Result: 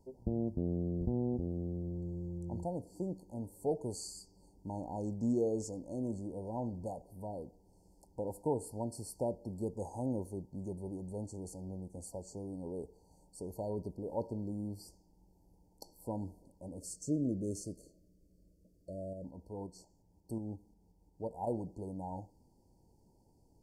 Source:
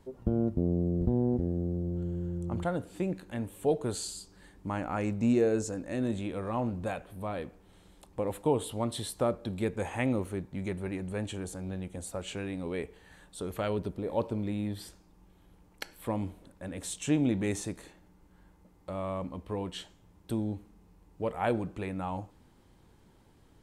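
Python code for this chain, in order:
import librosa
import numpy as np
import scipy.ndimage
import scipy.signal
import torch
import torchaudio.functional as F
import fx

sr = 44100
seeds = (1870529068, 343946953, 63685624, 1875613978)

y = fx.spec_erase(x, sr, start_s=16.81, length_s=2.43, low_hz=670.0, high_hz=2200.0)
y = fx.tremolo_shape(y, sr, shape='saw_up', hz=5.6, depth_pct=45, at=(19.13, 21.47))
y = fx.brickwall_bandstop(y, sr, low_hz=990.0, high_hz=4300.0)
y = y * librosa.db_to_amplitude(-6.5)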